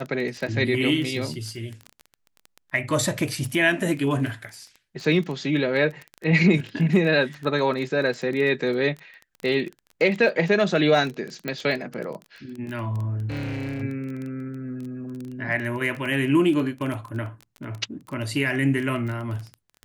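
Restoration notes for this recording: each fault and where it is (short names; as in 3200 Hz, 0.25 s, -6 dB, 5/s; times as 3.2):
crackle 16/s -29 dBFS
11.48 pop -15 dBFS
13.28–13.83 clipped -27 dBFS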